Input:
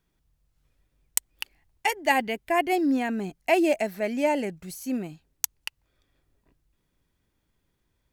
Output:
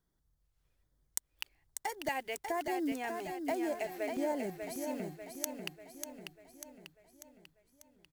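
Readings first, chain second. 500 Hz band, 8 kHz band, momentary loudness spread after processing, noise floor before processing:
-10.0 dB, -9.0 dB, 16 LU, -75 dBFS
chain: block floating point 5-bit; compressor, threshold -25 dBFS, peak gain reduction 9.5 dB; LFO notch square 1.2 Hz 210–2600 Hz; on a send: feedback echo 0.593 s, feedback 52%, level -6 dB; on the sum: gain -6.5 dB

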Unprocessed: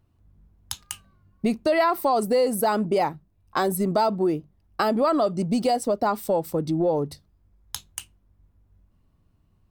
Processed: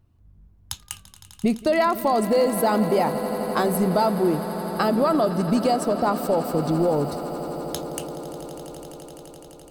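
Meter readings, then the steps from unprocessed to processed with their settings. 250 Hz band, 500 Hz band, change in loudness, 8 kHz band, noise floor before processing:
+3.0 dB, +1.5 dB, +1.5 dB, +1.0 dB, -65 dBFS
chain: low shelf 210 Hz +5 dB; on a send: swelling echo 85 ms, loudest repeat 8, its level -17.5 dB

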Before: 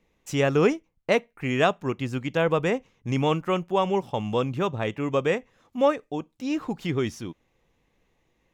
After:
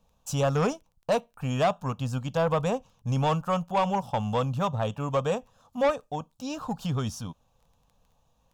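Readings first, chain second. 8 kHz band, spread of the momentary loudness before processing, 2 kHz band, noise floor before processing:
n/a, 8 LU, -7.5 dB, -71 dBFS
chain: fixed phaser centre 850 Hz, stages 4; soft clip -22 dBFS, distortion -12 dB; crackle 11/s -52 dBFS; gain +4.5 dB

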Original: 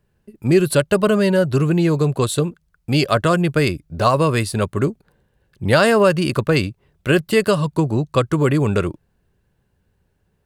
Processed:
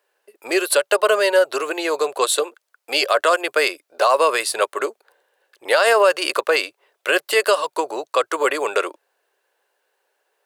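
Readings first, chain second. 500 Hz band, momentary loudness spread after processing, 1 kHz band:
-0.5 dB, 9 LU, +2.5 dB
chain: inverse Chebyshev high-pass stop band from 190 Hz, stop band 50 dB; limiter -11.5 dBFS, peak gain reduction 8 dB; gain +5.5 dB

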